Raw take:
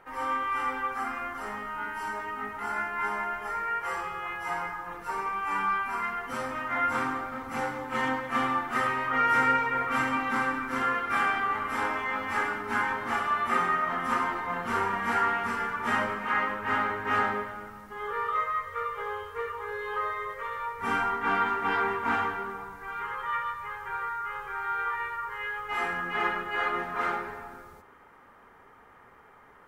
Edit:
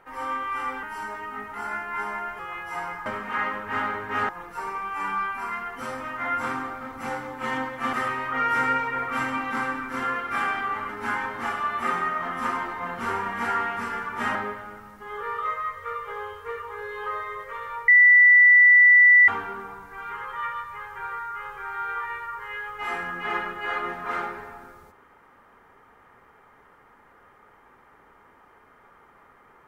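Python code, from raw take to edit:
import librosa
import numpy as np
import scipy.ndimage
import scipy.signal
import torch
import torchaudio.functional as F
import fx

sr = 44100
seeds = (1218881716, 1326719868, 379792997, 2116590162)

y = fx.edit(x, sr, fx.cut(start_s=0.83, length_s=1.05),
    fx.cut(start_s=3.44, length_s=0.69),
    fx.cut(start_s=8.44, length_s=0.28),
    fx.cut(start_s=11.68, length_s=0.88),
    fx.move(start_s=16.02, length_s=1.23, to_s=4.8),
    fx.bleep(start_s=20.78, length_s=1.4, hz=1970.0, db=-10.5), tone=tone)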